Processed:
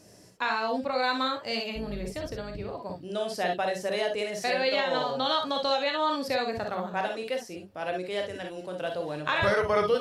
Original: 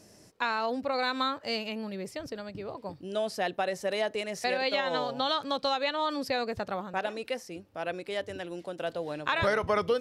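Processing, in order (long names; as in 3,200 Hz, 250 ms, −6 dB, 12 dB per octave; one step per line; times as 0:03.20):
0:01.75–0:02.72: sub-octave generator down 2 octaves, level +1 dB
reverb whose tail is shaped and stops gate 80 ms rising, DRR 2.5 dB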